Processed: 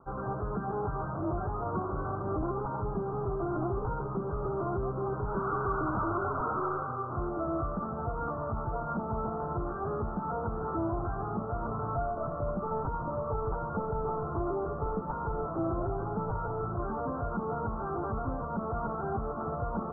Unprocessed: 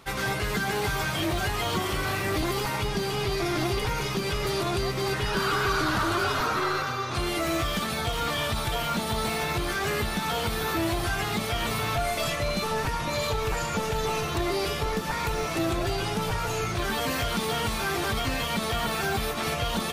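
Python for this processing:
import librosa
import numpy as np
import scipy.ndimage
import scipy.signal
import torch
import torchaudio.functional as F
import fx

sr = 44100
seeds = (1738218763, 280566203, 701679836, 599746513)

y = scipy.signal.sosfilt(scipy.signal.butter(16, 1400.0, 'lowpass', fs=sr, output='sos'), x)
y = y * 10.0 ** (-4.0 / 20.0)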